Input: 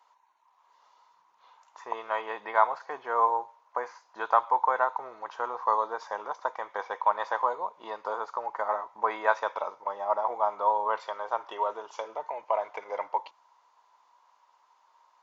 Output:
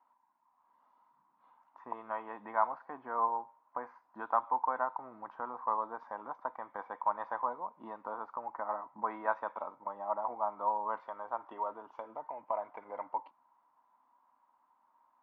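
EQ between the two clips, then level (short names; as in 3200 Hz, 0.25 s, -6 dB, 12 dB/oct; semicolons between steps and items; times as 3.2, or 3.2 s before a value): LPF 1200 Hz 12 dB/oct; dynamic EQ 160 Hz, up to -6 dB, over -49 dBFS, Q 0.77; resonant low shelf 330 Hz +8 dB, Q 3; -4.0 dB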